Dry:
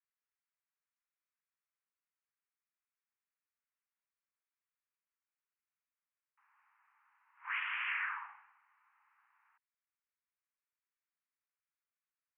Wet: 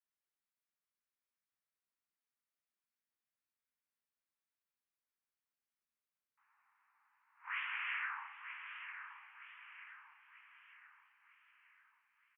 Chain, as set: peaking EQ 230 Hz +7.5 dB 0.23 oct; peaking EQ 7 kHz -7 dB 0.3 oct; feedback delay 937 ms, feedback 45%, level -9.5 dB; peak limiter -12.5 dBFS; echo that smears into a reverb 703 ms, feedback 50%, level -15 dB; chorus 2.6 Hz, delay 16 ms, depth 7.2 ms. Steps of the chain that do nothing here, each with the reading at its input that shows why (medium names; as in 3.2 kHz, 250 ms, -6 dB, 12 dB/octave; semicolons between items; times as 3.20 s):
peaking EQ 230 Hz: input has nothing below 720 Hz; peaking EQ 7 kHz: input has nothing above 3.4 kHz; peak limiter -12.5 dBFS: peak at its input -26.0 dBFS